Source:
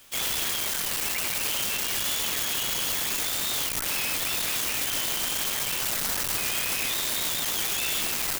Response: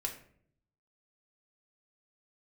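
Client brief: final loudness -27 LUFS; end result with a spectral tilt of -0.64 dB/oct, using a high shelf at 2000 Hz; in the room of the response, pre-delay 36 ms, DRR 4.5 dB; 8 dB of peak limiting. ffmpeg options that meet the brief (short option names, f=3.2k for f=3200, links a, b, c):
-filter_complex "[0:a]highshelf=f=2k:g=-3,alimiter=level_in=3.5dB:limit=-24dB:level=0:latency=1,volume=-3.5dB,asplit=2[a][b];[1:a]atrim=start_sample=2205,adelay=36[c];[b][c]afir=irnorm=-1:irlink=0,volume=-5.5dB[d];[a][d]amix=inputs=2:normalize=0,volume=5.5dB"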